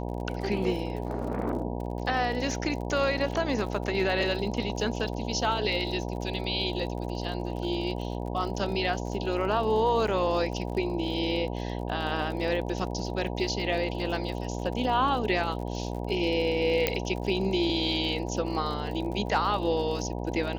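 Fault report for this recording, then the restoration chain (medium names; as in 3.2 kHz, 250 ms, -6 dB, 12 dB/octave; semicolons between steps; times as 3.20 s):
buzz 60 Hz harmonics 16 -33 dBFS
crackle 48 per s -36 dBFS
16.87 s: pop -8 dBFS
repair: de-click; de-hum 60 Hz, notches 16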